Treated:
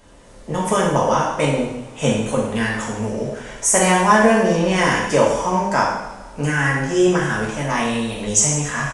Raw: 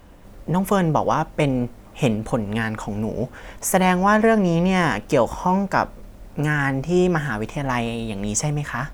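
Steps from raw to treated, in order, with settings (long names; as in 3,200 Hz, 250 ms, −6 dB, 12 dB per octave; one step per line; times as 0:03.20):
bass and treble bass −6 dB, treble +7 dB
coupled-rooms reverb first 0.83 s, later 2.3 s, from −18 dB, DRR −5 dB
downsampling to 22,050 Hz
level −2.5 dB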